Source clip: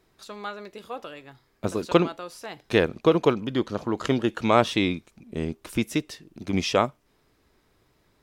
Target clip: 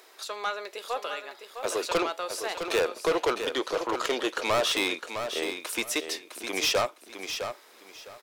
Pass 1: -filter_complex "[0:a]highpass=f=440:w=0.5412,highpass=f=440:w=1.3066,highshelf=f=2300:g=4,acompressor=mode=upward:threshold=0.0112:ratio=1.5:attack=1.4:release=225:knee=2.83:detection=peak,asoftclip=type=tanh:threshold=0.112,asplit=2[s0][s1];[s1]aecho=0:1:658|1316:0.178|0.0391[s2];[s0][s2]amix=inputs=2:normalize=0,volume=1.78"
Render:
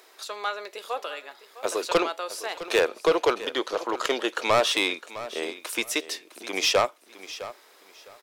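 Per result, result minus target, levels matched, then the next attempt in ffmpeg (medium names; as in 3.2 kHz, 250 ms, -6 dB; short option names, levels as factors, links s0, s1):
echo-to-direct -7 dB; saturation: distortion -4 dB
-filter_complex "[0:a]highpass=f=440:w=0.5412,highpass=f=440:w=1.3066,highshelf=f=2300:g=4,acompressor=mode=upward:threshold=0.0112:ratio=1.5:attack=1.4:release=225:knee=2.83:detection=peak,asoftclip=type=tanh:threshold=0.112,asplit=2[s0][s1];[s1]aecho=0:1:658|1316|1974:0.398|0.0876|0.0193[s2];[s0][s2]amix=inputs=2:normalize=0,volume=1.78"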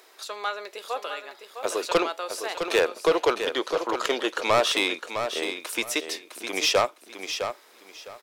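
saturation: distortion -4 dB
-filter_complex "[0:a]highpass=f=440:w=0.5412,highpass=f=440:w=1.3066,highshelf=f=2300:g=4,acompressor=mode=upward:threshold=0.0112:ratio=1.5:attack=1.4:release=225:knee=2.83:detection=peak,asoftclip=type=tanh:threshold=0.0531,asplit=2[s0][s1];[s1]aecho=0:1:658|1316|1974:0.398|0.0876|0.0193[s2];[s0][s2]amix=inputs=2:normalize=0,volume=1.78"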